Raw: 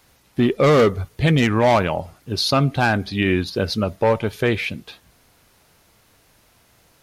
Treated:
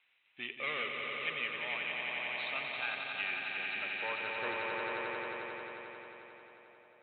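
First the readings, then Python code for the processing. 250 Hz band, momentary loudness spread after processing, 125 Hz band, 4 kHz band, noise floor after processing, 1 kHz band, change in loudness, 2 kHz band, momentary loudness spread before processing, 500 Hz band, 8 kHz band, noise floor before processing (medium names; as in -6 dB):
-30.0 dB, 11 LU, -38.5 dB, -13.5 dB, -70 dBFS, -17.0 dB, -17.0 dB, -8.5 dB, 10 LU, -23.0 dB, under -40 dB, -58 dBFS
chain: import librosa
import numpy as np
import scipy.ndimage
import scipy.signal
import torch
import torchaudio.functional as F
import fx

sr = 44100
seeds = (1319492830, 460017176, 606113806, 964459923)

p1 = scipy.signal.sosfilt(scipy.signal.cheby1(8, 1.0, 3900.0, 'lowpass', fs=sr, output='sos'), x)
p2 = fx.filter_sweep_bandpass(p1, sr, from_hz=2500.0, to_hz=610.0, start_s=3.54, end_s=5.14, q=3.5)
p3 = p2 + fx.echo_swell(p2, sr, ms=89, loudest=5, wet_db=-5.5, dry=0)
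p4 = fx.rider(p3, sr, range_db=4, speed_s=0.5)
y = p4 * librosa.db_to_amplitude(-7.5)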